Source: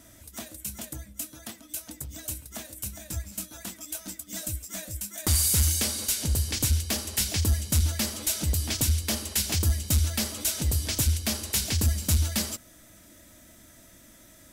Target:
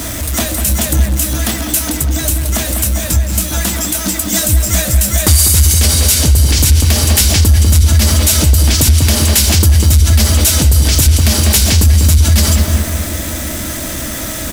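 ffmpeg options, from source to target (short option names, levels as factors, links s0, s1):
-filter_complex "[0:a]aeval=exprs='val(0)+0.5*0.0126*sgn(val(0))':c=same,equalizer=f=66:t=o:w=0.38:g=8.5,asettb=1/sr,asplit=3[s0][s1][s2];[s0]atrim=end=1.934[s3];[s1]atrim=start=1.93:end=4.18,asetpts=PTS-STARTPTS,afade=t=in:d=0.004:c=qsin,afade=t=out:st=2.246:d=0.004:c=qsin,acompressor=threshold=0.0251:ratio=2.5[s4];[s2]atrim=start=4.176[s5];[s3][s4]acrossfade=d=0.004:c1=hsin:c2=qsin[s6];[s6][s5]acrossfade=d=0.004:c1=qsin:c2=hsin,asplit=2[s7][s8];[s8]adelay=197,lowpass=f=2100:p=1,volume=0.501,asplit=2[s9][s10];[s10]adelay=197,lowpass=f=2100:p=1,volume=0.55,asplit=2[s11][s12];[s12]adelay=197,lowpass=f=2100:p=1,volume=0.55,asplit=2[s13][s14];[s14]adelay=197,lowpass=f=2100:p=1,volume=0.55,asplit=2[s15][s16];[s16]adelay=197,lowpass=f=2100:p=1,volume=0.55,asplit=2[s17][s18];[s18]adelay=197,lowpass=f=2100:p=1,volume=0.55,asplit=2[s19][s20];[s20]adelay=197,lowpass=f=2100:p=1,volume=0.55[s21];[s7][s9][s11][s13][s15][s17][s19][s21]amix=inputs=8:normalize=0,alimiter=level_in=10.6:limit=0.891:release=50:level=0:latency=1,volume=0.891"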